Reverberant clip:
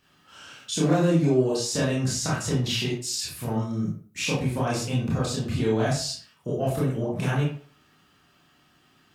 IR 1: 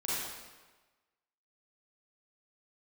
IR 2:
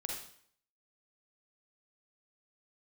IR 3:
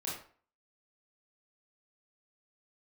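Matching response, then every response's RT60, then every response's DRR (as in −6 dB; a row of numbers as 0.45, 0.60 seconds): 3; 1.3, 0.60, 0.45 seconds; −9.0, −0.5, −6.5 decibels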